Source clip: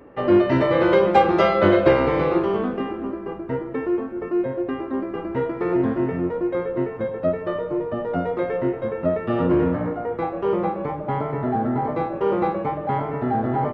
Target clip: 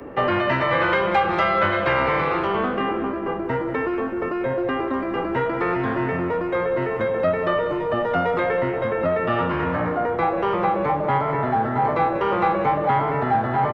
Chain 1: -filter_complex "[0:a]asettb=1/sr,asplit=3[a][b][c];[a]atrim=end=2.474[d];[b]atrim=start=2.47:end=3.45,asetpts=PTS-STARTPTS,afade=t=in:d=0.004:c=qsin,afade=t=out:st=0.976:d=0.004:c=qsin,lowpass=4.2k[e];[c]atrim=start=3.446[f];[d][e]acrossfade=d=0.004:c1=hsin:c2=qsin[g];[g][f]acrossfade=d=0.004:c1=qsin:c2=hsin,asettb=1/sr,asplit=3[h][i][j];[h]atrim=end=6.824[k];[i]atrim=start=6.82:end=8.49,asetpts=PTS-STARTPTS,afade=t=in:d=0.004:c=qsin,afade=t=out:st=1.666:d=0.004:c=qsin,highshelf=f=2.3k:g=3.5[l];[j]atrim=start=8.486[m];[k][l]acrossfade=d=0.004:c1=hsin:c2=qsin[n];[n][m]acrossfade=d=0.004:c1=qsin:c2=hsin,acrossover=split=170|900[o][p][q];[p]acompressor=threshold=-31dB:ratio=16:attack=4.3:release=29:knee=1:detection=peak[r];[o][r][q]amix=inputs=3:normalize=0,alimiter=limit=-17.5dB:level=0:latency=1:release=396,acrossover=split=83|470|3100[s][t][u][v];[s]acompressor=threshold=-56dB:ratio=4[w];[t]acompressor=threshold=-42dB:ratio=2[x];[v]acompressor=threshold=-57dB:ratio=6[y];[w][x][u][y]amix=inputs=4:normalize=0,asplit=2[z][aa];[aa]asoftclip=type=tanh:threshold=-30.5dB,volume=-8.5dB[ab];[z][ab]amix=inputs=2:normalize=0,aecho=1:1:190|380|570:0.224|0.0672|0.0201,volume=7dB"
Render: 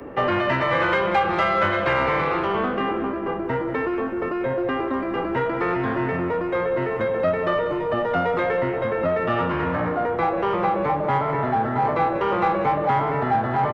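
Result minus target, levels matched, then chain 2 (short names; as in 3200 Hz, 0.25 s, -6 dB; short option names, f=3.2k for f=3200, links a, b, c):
soft clip: distortion +9 dB
-filter_complex "[0:a]asettb=1/sr,asplit=3[a][b][c];[a]atrim=end=2.474[d];[b]atrim=start=2.47:end=3.45,asetpts=PTS-STARTPTS,afade=t=in:d=0.004:c=qsin,afade=t=out:st=0.976:d=0.004:c=qsin,lowpass=4.2k[e];[c]atrim=start=3.446[f];[d][e]acrossfade=d=0.004:c1=hsin:c2=qsin[g];[g][f]acrossfade=d=0.004:c1=qsin:c2=hsin,asettb=1/sr,asplit=3[h][i][j];[h]atrim=end=6.824[k];[i]atrim=start=6.82:end=8.49,asetpts=PTS-STARTPTS,afade=t=in:d=0.004:c=qsin,afade=t=out:st=1.666:d=0.004:c=qsin,highshelf=f=2.3k:g=3.5[l];[j]atrim=start=8.486[m];[k][l]acrossfade=d=0.004:c1=hsin:c2=qsin[n];[n][m]acrossfade=d=0.004:c1=qsin:c2=hsin,acrossover=split=170|900[o][p][q];[p]acompressor=threshold=-31dB:ratio=16:attack=4.3:release=29:knee=1:detection=peak[r];[o][r][q]amix=inputs=3:normalize=0,alimiter=limit=-17.5dB:level=0:latency=1:release=396,acrossover=split=83|470|3100[s][t][u][v];[s]acompressor=threshold=-56dB:ratio=4[w];[t]acompressor=threshold=-42dB:ratio=2[x];[v]acompressor=threshold=-57dB:ratio=6[y];[w][x][u][y]amix=inputs=4:normalize=0,asplit=2[z][aa];[aa]asoftclip=type=tanh:threshold=-22.5dB,volume=-8.5dB[ab];[z][ab]amix=inputs=2:normalize=0,aecho=1:1:190|380|570:0.224|0.0672|0.0201,volume=7dB"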